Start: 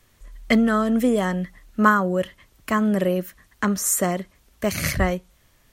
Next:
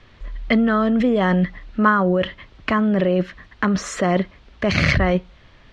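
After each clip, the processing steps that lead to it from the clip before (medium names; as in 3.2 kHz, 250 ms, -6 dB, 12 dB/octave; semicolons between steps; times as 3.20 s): low-pass 4.1 kHz 24 dB/octave; in parallel at +1.5 dB: compressor with a negative ratio -26 dBFS, ratio -0.5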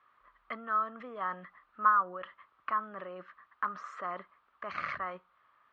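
band-pass filter 1.2 kHz, Q 6.3; trim -2.5 dB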